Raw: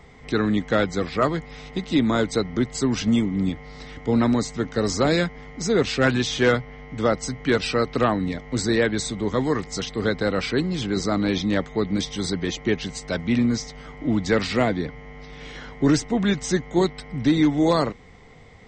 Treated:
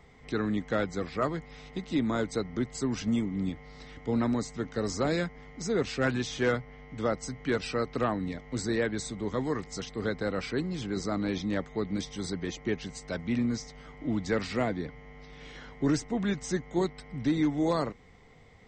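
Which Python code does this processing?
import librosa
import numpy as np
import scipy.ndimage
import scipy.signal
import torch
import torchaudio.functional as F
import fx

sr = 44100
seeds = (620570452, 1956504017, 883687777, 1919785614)

y = fx.dynamic_eq(x, sr, hz=3500.0, q=1.5, threshold_db=-41.0, ratio=4.0, max_db=-4)
y = y * librosa.db_to_amplitude(-8.0)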